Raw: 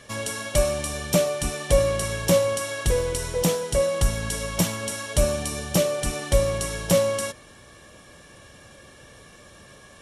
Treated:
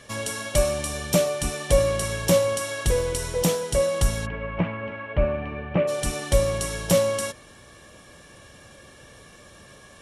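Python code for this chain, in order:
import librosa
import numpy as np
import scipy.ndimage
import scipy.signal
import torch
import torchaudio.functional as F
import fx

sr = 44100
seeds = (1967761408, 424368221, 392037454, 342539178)

y = fx.ellip_lowpass(x, sr, hz=2500.0, order=4, stop_db=80, at=(4.25, 5.87), fade=0.02)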